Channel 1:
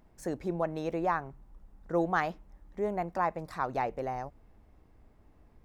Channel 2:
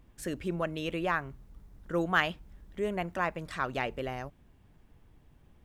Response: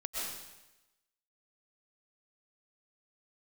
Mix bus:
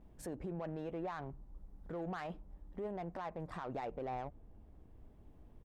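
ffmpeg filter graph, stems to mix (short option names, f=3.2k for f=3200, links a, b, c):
-filter_complex "[0:a]alimiter=level_in=1.5dB:limit=-24dB:level=0:latency=1:release=28,volume=-1.5dB,adynamicsmooth=sensitivity=4.5:basefreq=870,volume=1.5dB,asplit=2[a][b];[1:a]volume=-1,adelay=8.9,volume=-9dB[c];[b]apad=whole_len=249177[d];[c][d]sidechaincompress=threshold=-38dB:ratio=8:attack=16:release=1420[e];[a][e]amix=inputs=2:normalize=0,alimiter=level_in=10dB:limit=-24dB:level=0:latency=1:release=70,volume=-10dB"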